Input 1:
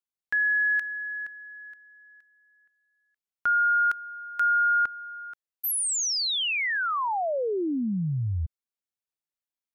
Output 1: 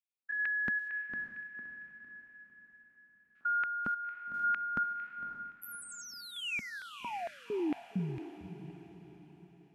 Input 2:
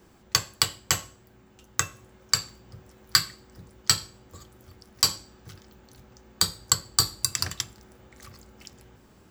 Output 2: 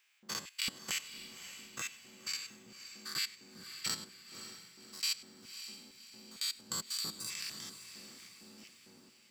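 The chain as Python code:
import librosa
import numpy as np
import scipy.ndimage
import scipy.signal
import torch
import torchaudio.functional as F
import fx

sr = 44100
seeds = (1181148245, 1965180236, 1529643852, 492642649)

y = fx.spec_steps(x, sr, hold_ms=100)
y = fx.filter_lfo_highpass(y, sr, shape='square', hz=2.2, low_hz=220.0, high_hz=2400.0, q=3.4)
y = fx.echo_diffused(y, sr, ms=560, feedback_pct=45, wet_db=-10.5)
y = F.gain(torch.from_numpy(y), -8.5).numpy()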